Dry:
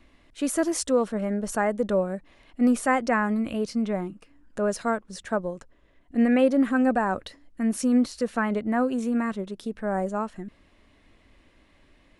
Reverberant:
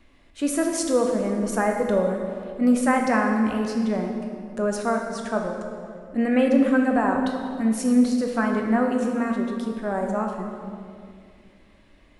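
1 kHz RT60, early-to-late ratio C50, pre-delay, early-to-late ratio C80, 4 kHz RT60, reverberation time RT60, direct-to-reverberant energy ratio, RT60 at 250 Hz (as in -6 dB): 2.1 s, 3.5 dB, 9 ms, 4.5 dB, 1.6 s, 2.3 s, 1.5 dB, 2.9 s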